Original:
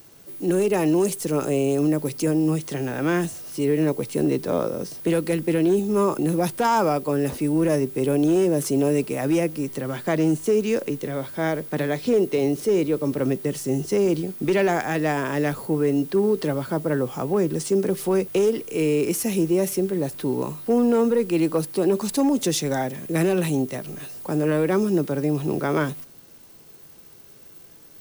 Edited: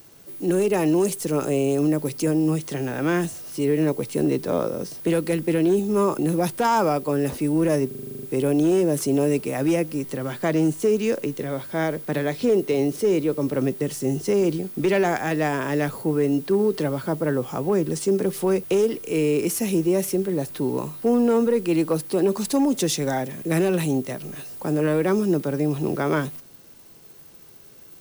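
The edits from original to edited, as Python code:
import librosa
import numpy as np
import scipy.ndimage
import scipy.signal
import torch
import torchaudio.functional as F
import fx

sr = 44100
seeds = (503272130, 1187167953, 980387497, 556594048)

y = fx.edit(x, sr, fx.stutter(start_s=7.87, slice_s=0.04, count=10), tone=tone)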